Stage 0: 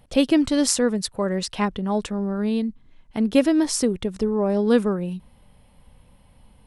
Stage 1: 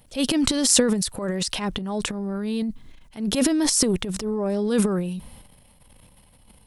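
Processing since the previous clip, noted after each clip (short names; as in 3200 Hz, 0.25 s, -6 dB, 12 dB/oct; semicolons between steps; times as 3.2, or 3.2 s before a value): high shelf 4000 Hz +11.5 dB; transient shaper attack -9 dB, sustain +11 dB; gain -3 dB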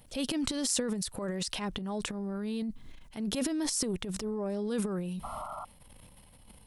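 compressor 2:1, threshold -34 dBFS, peak gain reduction 11.5 dB; painted sound noise, 5.23–5.65, 580–1400 Hz -38 dBFS; gain -2 dB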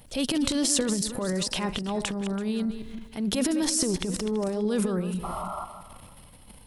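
regenerating reverse delay 0.166 s, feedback 44%, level -10 dB; gain +5.5 dB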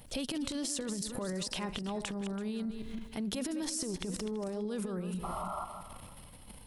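compressor, threshold -32 dBFS, peak gain reduction 11.5 dB; gain -1.5 dB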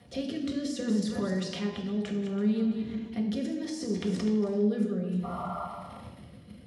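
rotary speaker horn 0.65 Hz; reverb RT60 0.85 s, pre-delay 3 ms, DRR -1 dB; gain -5 dB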